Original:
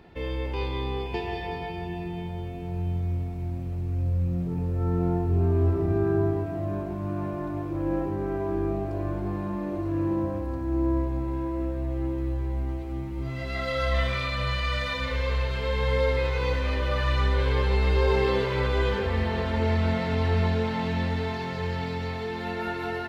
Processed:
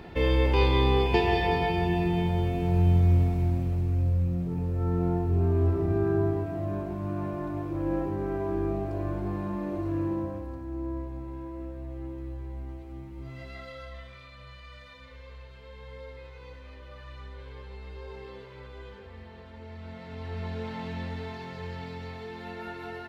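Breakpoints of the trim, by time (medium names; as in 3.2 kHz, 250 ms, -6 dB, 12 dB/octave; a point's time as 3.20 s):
3.25 s +7.5 dB
4.38 s -1.5 dB
9.90 s -1.5 dB
10.74 s -9 dB
13.41 s -9 dB
14.03 s -20 dB
19.68 s -20 dB
20.70 s -8 dB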